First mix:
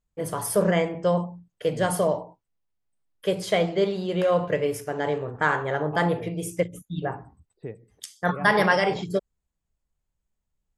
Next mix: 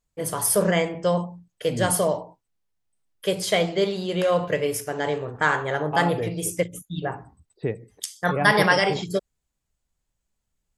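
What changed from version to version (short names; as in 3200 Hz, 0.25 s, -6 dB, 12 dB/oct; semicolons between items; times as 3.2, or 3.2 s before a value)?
second voice +9.5 dB; master: add high shelf 2800 Hz +9 dB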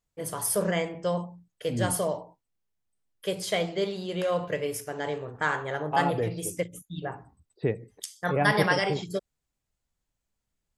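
first voice -6.0 dB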